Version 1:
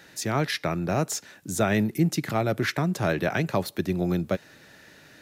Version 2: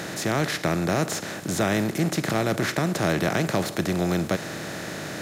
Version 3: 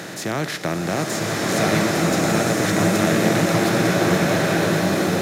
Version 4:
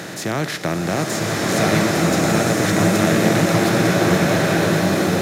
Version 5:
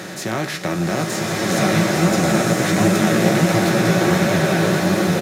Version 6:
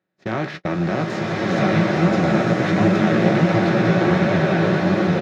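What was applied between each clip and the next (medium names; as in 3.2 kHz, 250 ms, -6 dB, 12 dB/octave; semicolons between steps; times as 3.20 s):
spectral levelling over time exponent 0.4; trim -4 dB
high-pass 100 Hz; swelling reverb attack 1380 ms, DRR -5.5 dB
bass shelf 66 Hz +7.5 dB; trim +1.5 dB
flange 1.4 Hz, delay 8.7 ms, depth 9.7 ms, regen +37%; comb 5.4 ms, depth 32%; trim +3 dB
gate -25 dBFS, range -46 dB; distance through air 230 m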